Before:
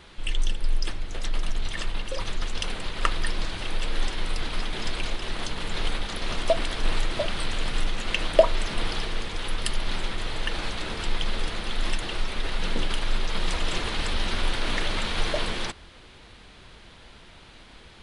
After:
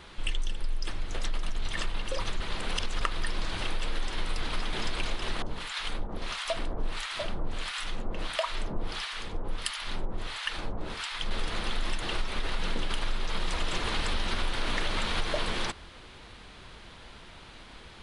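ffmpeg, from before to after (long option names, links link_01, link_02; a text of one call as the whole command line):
ffmpeg -i in.wav -filter_complex "[0:a]asettb=1/sr,asplit=3[link_01][link_02][link_03];[link_01]atrim=end=5.424[link_04];[link_02]atrim=start=5.42:end=11.31,asetpts=PTS-STARTPTS,afade=type=in:duration=0.004:curve=qsin,afade=type=out:start_time=5.886:duration=0.004:curve=qsin,acrossover=split=920[link_05][link_06];[link_05]aeval=exprs='val(0)*(1-1/2+1/2*cos(2*PI*1.5*n/s))':channel_layout=same[link_07];[link_06]aeval=exprs='val(0)*(1-1/2-1/2*cos(2*PI*1.5*n/s))':channel_layout=same[link_08];[link_07][link_08]amix=inputs=2:normalize=0[link_09];[link_03]atrim=start=11.306[link_10];[link_04][link_09]acrossfade=duration=0.004:curve1=hsin:curve2=qsin[link_11];[link_11][link_10]acrossfade=duration=0.004:curve1=qsin:curve2=hsin,asplit=3[link_12][link_13][link_14];[link_12]atrim=end=2.402[link_15];[link_13]atrim=start=2.398:end=3.012,asetpts=PTS-STARTPTS,areverse[link_16];[link_14]atrim=start=3.008[link_17];[link_15][link_16]acrossfade=duration=0.004:curve1=hsin:curve2=hsin[link_18];[link_18][link_17]acrossfade=duration=0.004:curve1=hsin:curve2=hsin,equalizer=frequency=1100:width=1.5:gain=2.5,acompressor=threshold=-24dB:ratio=6" out.wav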